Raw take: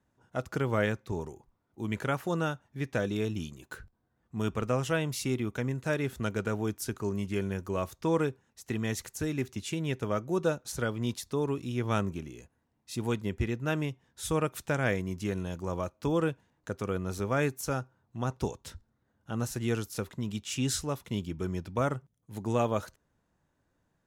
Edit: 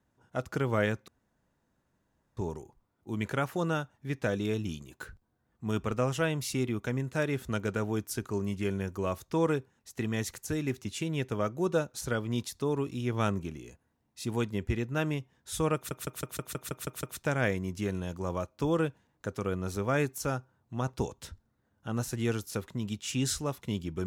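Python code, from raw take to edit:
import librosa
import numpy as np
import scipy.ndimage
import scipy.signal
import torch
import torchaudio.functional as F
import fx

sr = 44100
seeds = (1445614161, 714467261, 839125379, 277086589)

y = fx.edit(x, sr, fx.insert_room_tone(at_s=1.08, length_s=1.29),
    fx.stutter(start_s=14.46, slice_s=0.16, count=9), tone=tone)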